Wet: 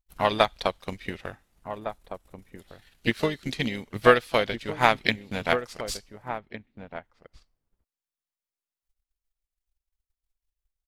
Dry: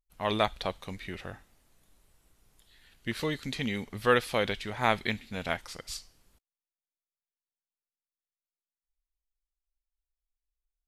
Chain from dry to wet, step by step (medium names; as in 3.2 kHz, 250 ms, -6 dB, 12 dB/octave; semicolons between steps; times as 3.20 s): harmony voices +5 st -12 dB; transient shaper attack +10 dB, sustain -6 dB; echo from a far wall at 250 m, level -10 dB